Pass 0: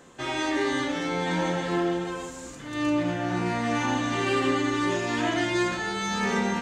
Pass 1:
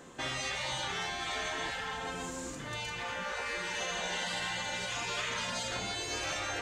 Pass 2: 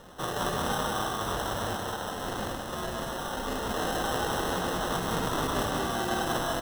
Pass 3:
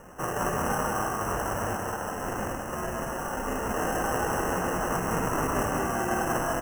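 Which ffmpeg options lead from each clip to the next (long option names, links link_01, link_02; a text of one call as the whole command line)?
ffmpeg -i in.wav -af "afftfilt=real='re*lt(hypot(re,im),0.0891)':imag='im*lt(hypot(re,im),0.0891)':win_size=1024:overlap=0.75" out.wav
ffmpeg -i in.wav -filter_complex "[0:a]aemphasis=mode=production:type=riaa,acrusher=samples=19:mix=1:aa=0.000001,asplit=2[link_01][link_02];[link_02]aecho=0:1:99.13|186.6:0.282|0.631[link_03];[link_01][link_03]amix=inputs=2:normalize=0" out.wav
ffmpeg -i in.wav -af "asuperstop=centerf=4000:order=12:qfactor=1.5,volume=2dB" out.wav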